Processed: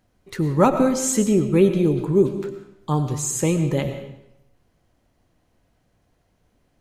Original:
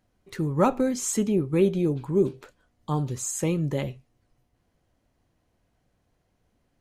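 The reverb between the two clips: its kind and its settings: digital reverb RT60 0.83 s, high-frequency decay 0.9×, pre-delay 70 ms, DRR 8.5 dB; gain +5 dB

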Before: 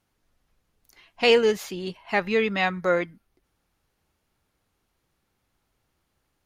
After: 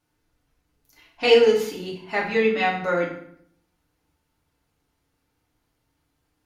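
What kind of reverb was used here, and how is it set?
FDN reverb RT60 0.65 s, low-frequency decay 1.35×, high-frequency decay 0.8×, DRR -3.5 dB; gain -4.5 dB

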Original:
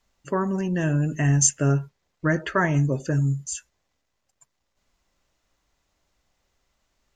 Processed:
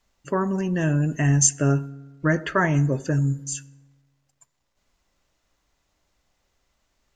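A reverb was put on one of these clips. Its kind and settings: FDN reverb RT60 1.3 s, low-frequency decay 1×, high-frequency decay 0.5×, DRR 19.5 dB; gain +1 dB

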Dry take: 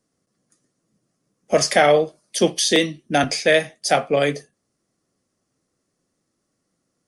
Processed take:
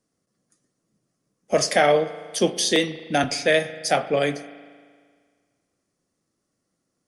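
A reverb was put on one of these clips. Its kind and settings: spring tank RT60 1.8 s, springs 38 ms, chirp 35 ms, DRR 13.5 dB; gain -3 dB

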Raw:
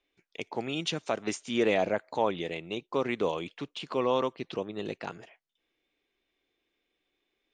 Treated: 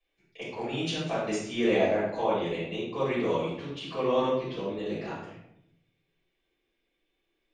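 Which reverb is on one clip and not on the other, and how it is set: shoebox room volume 200 m³, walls mixed, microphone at 5.9 m; gain -14.5 dB

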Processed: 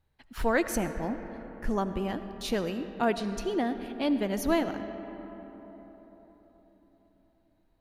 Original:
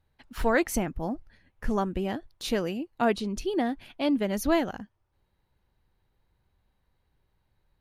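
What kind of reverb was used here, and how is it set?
digital reverb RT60 4.6 s, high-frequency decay 0.4×, pre-delay 40 ms, DRR 9.5 dB; gain -2 dB

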